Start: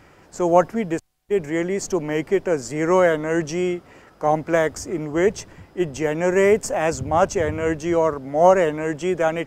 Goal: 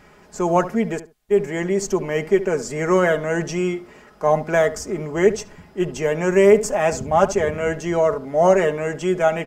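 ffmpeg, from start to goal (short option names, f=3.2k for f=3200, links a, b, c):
-filter_complex "[0:a]aecho=1:1:4.8:0.58,asplit=2[a][b];[b]adelay=71,lowpass=f=1.6k:p=1,volume=-13dB,asplit=2[c][d];[d]adelay=71,lowpass=f=1.6k:p=1,volume=0.2[e];[a][c][e]amix=inputs=3:normalize=0"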